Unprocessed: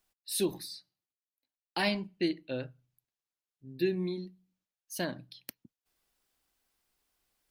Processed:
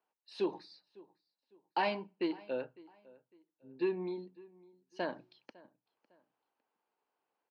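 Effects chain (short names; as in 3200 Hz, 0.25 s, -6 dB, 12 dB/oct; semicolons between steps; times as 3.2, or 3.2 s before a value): 4.99–5.45 added noise blue -69 dBFS; in parallel at -5.5 dB: soft clip -29.5 dBFS, distortion -10 dB; on the sum: speaker cabinet 310–3900 Hz, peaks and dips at 460 Hz +5 dB, 900 Hz +9 dB, 2000 Hz -5 dB, 3600 Hz -9 dB; on a send: feedback echo 0.554 s, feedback 33%, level -22 dB; on the sum: mismatched tape noise reduction decoder only; gain -4.5 dB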